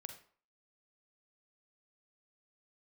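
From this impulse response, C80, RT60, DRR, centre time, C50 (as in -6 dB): 12.5 dB, 0.50 s, 6.0 dB, 14 ms, 8.5 dB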